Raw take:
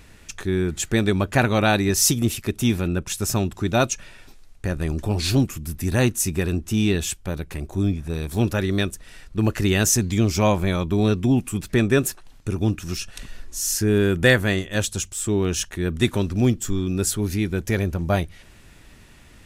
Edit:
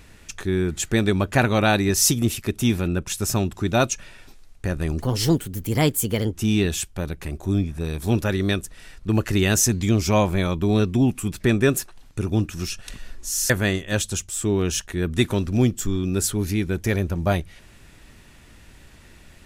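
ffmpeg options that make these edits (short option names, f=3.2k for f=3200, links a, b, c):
-filter_complex "[0:a]asplit=4[a][b][c][d];[a]atrim=end=5.004[e];[b]atrim=start=5:end=6.62,asetpts=PTS-STARTPTS,asetrate=53802,aresample=44100,atrim=end_sample=58559,asetpts=PTS-STARTPTS[f];[c]atrim=start=6.616:end=13.792[g];[d]atrim=start=14.328[h];[e][f]acrossfade=d=0.004:c1=hsin:c2=hsin[i];[i][g]acrossfade=d=0.004:c1=hsin:c2=hsin[j];[j][h]acrossfade=d=0.004:c1=hsin:c2=hsin"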